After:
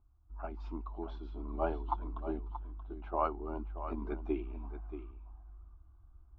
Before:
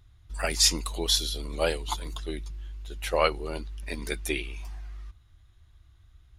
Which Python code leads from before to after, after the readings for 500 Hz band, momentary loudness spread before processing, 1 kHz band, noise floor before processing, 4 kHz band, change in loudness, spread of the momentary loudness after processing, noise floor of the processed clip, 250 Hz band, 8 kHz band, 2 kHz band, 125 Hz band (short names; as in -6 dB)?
-8.5 dB, 20 LU, -3.5 dB, -58 dBFS, under -35 dB, -11.5 dB, 19 LU, -62 dBFS, -2.5 dB, under -40 dB, -20.5 dB, -6.5 dB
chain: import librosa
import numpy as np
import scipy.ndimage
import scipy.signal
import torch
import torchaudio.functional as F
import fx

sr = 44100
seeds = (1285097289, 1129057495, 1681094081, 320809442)

y = fx.fixed_phaser(x, sr, hz=500.0, stages=6)
y = fx.rider(y, sr, range_db=4, speed_s=0.5)
y = scipy.signal.sosfilt(scipy.signal.butter(4, 1600.0, 'lowpass', fs=sr, output='sos'), y)
y = y + 10.0 ** (-11.0 / 20.0) * np.pad(y, (int(630 * sr / 1000.0), 0))[:len(y)]
y = y * librosa.db_to_amplitude(-4.0)